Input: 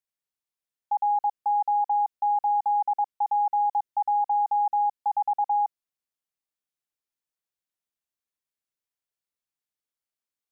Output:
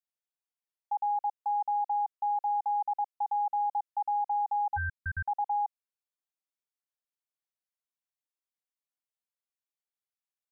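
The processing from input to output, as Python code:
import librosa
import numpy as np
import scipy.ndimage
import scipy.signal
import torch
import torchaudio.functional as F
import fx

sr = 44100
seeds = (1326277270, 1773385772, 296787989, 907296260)

y = scipy.signal.sosfilt(scipy.signal.butter(2, 520.0, 'highpass', fs=sr, output='sos'), x)
y = fx.peak_eq(y, sr, hz=660.0, db=4.0, octaves=1.6)
y = fx.ring_mod(y, sr, carrier_hz=740.0, at=(4.76, 5.26), fade=0.02)
y = y * librosa.db_to_amplitude(-8.5)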